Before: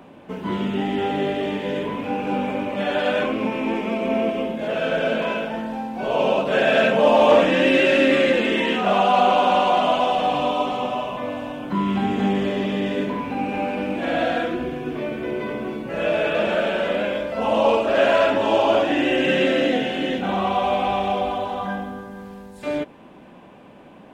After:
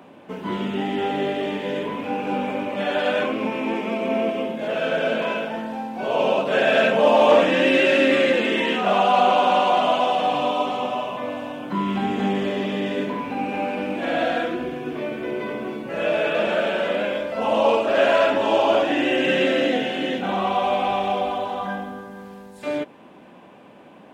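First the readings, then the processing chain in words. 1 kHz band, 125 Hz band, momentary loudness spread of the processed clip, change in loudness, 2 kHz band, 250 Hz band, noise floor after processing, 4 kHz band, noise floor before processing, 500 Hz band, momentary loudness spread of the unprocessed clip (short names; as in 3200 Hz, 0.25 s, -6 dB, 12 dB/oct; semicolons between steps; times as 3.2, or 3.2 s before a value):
0.0 dB, -3.0 dB, 12 LU, -0.5 dB, 0.0 dB, -2.0 dB, -46 dBFS, 0.0 dB, -45 dBFS, -0.5 dB, 12 LU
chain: HPF 180 Hz 6 dB/oct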